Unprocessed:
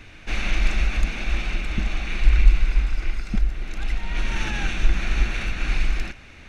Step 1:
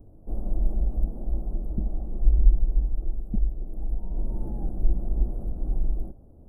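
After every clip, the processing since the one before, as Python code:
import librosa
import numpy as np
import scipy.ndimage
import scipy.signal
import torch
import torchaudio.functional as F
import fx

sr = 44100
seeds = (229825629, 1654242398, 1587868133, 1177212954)

y = scipy.signal.sosfilt(scipy.signal.cheby2(4, 80, [2200.0, 4700.0], 'bandstop', fs=sr, output='sos'), x)
y = F.gain(torch.from_numpy(y), -3.0).numpy()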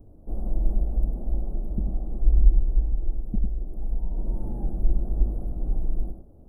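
y = x + 10.0 ** (-6.5 / 20.0) * np.pad(x, (int(101 * sr / 1000.0), 0))[:len(x)]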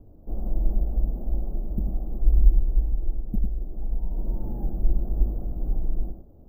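y = np.repeat(scipy.signal.resample_poly(x, 1, 3), 3)[:len(x)]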